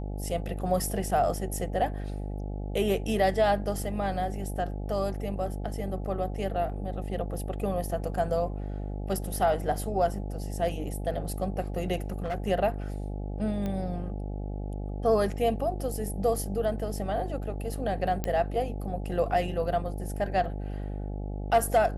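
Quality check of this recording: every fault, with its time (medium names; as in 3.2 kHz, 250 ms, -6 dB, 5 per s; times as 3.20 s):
buzz 50 Hz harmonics 17 -34 dBFS
12.10–12.48 s: clipped -27.5 dBFS
13.66 s: pop -21 dBFS
18.24 s: pop -15 dBFS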